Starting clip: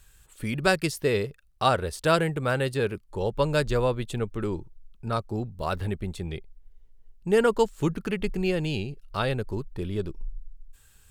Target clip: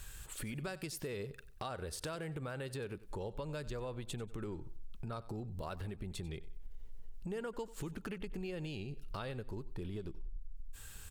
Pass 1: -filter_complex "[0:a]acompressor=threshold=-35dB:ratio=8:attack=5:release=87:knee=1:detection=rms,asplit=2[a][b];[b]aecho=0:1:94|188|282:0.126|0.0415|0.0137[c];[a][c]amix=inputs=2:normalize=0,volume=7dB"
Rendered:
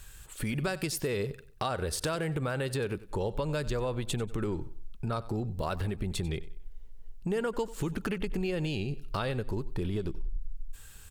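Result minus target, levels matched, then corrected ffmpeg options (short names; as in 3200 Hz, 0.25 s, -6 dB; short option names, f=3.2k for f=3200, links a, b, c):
compressor: peak gain reduction -10 dB
-filter_complex "[0:a]acompressor=threshold=-46.5dB:ratio=8:attack=5:release=87:knee=1:detection=rms,asplit=2[a][b];[b]aecho=0:1:94|188|282:0.126|0.0415|0.0137[c];[a][c]amix=inputs=2:normalize=0,volume=7dB"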